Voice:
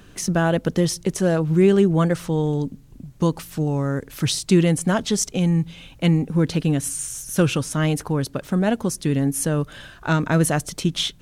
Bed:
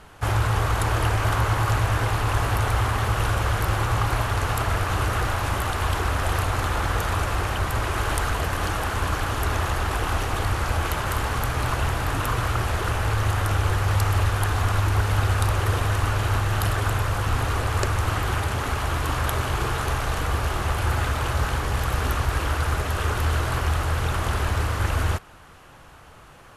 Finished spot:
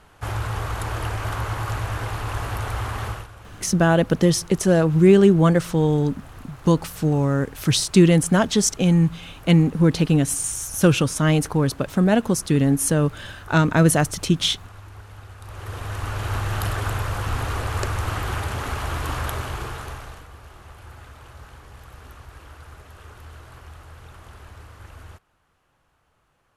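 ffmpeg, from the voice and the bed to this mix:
-filter_complex "[0:a]adelay=3450,volume=1.33[s0];[1:a]volume=4.73,afade=t=out:st=3.07:d=0.2:silence=0.16788,afade=t=in:st=15.41:d=1.06:silence=0.11885,afade=t=out:st=19.16:d=1.11:silence=0.133352[s1];[s0][s1]amix=inputs=2:normalize=0"

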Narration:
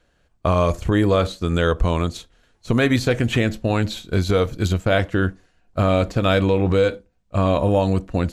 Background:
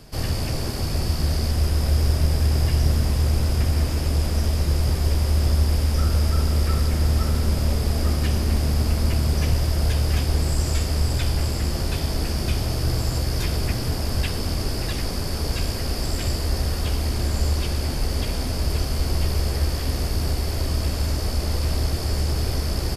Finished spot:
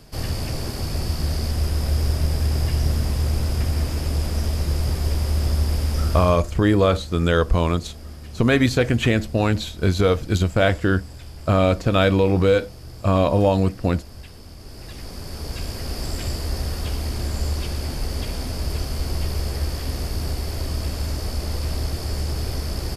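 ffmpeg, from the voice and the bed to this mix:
-filter_complex "[0:a]adelay=5700,volume=1.06[s0];[1:a]volume=4.22,afade=t=out:st=6.1:d=0.32:silence=0.177828,afade=t=in:st=14.59:d=1.46:silence=0.199526[s1];[s0][s1]amix=inputs=2:normalize=0"

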